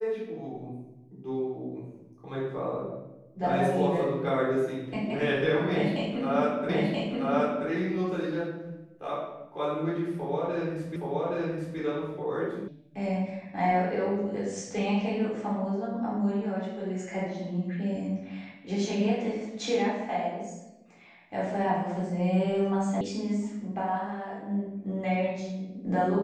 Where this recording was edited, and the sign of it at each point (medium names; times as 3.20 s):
6.69 s: repeat of the last 0.98 s
10.96 s: repeat of the last 0.82 s
12.68 s: sound stops dead
23.01 s: sound stops dead